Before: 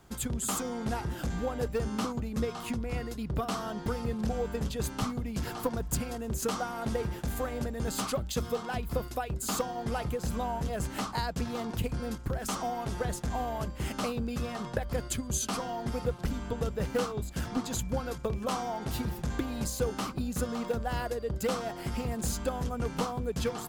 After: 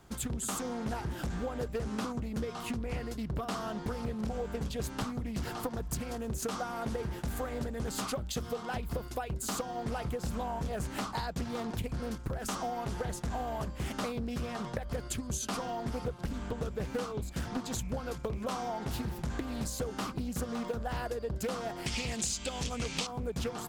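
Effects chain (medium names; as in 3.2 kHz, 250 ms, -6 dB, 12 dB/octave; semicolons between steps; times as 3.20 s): 21.86–23.07 s: high-order bell 4.3 kHz +15.5 dB 2.3 oct; compression 6:1, threshold -31 dBFS, peak gain reduction 11.5 dB; loudspeaker Doppler distortion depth 0.36 ms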